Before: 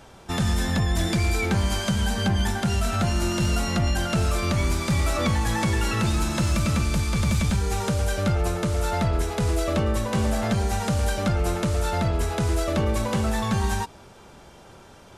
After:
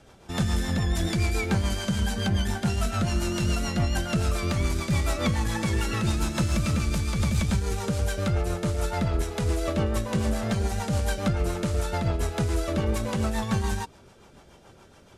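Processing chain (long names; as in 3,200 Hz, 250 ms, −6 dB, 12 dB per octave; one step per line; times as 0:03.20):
rotating-speaker cabinet horn 7 Hz
harmonic generator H 5 −21 dB, 7 −22 dB, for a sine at −11.5 dBFS
level −1.5 dB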